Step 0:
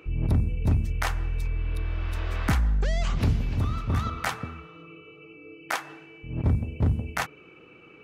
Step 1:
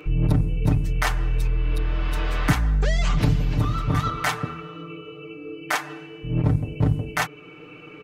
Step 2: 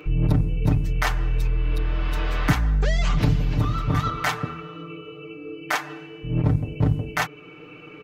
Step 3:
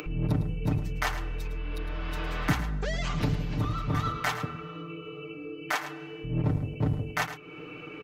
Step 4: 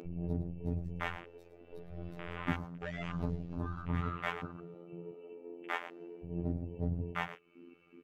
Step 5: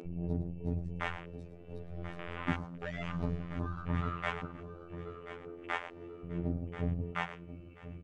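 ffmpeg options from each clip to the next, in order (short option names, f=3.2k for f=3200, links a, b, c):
-filter_complex "[0:a]asplit=2[a][b];[b]alimiter=limit=-23.5dB:level=0:latency=1:release=477,volume=1dB[c];[a][c]amix=inputs=2:normalize=0,aecho=1:1:6.7:0.81"
-af "equalizer=f=9.3k:t=o:w=0.57:g=-6"
-filter_complex "[0:a]aecho=1:1:108:0.251,acrossover=split=120|3200[a][b][c];[a]volume=26dB,asoftclip=hard,volume=-26dB[d];[d][b][c]amix=inputs=3:normalize=0,acompressor=mode=upward:threshold=-29dB:ratio=2.5,volume=-5dB"
-af "aphaser=in_gain=1:out_gain=1:delay=3.7:decay=0.31:speed=0.99:type=triangular,afftfilt=real='hypot(re,im)*cos(PI*b)':imag='0':win_size=2048:overlap=0.75,afwtdn=0.0126,volume=-4dB"
-af "aecho=1:1:1035|2070|3105:0.224|0.0739|0.0244,aresample=22050,aresample=44100,volume=1dB"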